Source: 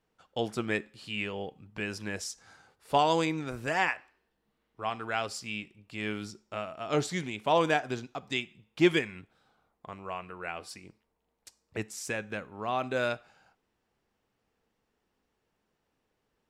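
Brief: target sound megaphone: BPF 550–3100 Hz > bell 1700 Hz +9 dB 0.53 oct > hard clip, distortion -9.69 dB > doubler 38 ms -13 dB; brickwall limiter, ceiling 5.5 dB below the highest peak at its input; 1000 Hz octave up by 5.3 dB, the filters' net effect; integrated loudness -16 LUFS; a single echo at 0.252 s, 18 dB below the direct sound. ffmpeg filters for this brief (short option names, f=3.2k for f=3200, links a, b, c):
-filter_complex "[0:a]equalizer=f=1k:t=o:g=6.5,alimiter=limit=-14dB:level=0:latency=1,highpass=550,lowpass=3.1k,equalizer=f=1.7k:t=o:w=0.53:g=9,aecho=1:1:252:0.126,asoftclip=type=hard:threshold=-23.5dB,asplit=2[a][b];[b]adelay=38,volume=-13dB[c];[a][c]amix=inputs=2:normalize=0,volume=16.5dB"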